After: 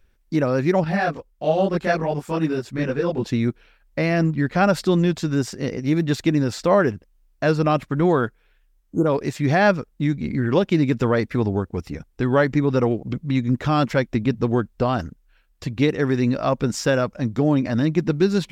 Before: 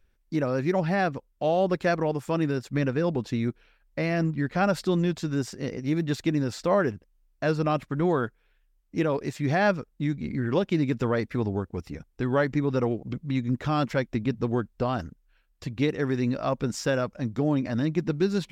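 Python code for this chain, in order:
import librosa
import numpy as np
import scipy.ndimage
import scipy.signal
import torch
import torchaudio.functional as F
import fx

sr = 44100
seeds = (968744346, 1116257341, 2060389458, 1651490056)

y = fx.chorus_voices(x, sr, voices=4, hz=1.3, base_ms=22, depth_ms=3.0, mix_pct=60, at=(0.84, 3.24))
y = fx.spec_repair(y, sr, seeds[0], start_s=8.8, length_s=0.24, low_hz=1500.0, high_hz=6300.0, source='before')
y = y * librosa.db_to_amplitude(6.0)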